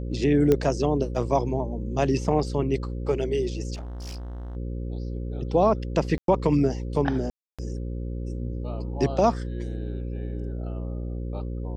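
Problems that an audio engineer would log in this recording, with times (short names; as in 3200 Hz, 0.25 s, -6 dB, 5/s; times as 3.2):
buzz 60 Hz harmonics 9 -31 dBFS
0.52 pop -10 dBFS
3.74–4.57 clipped -33 dBFS
6.18–6.28 gap 0.102 s
7.3–7.59 gap 0.286 s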